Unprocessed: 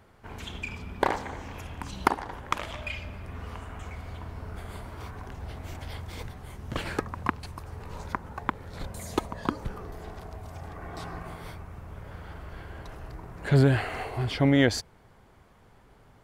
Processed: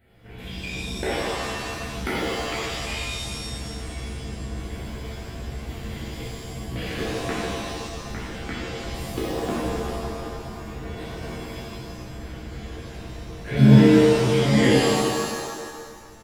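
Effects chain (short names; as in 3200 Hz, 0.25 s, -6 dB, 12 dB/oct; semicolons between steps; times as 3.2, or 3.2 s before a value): fixed phaser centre 2500 Hz, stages 4; doubler 16 ms -5 dB; shimmer reverb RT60 1.7 s, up +7 st, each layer -2 dB, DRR -8 dB; gain -5 dB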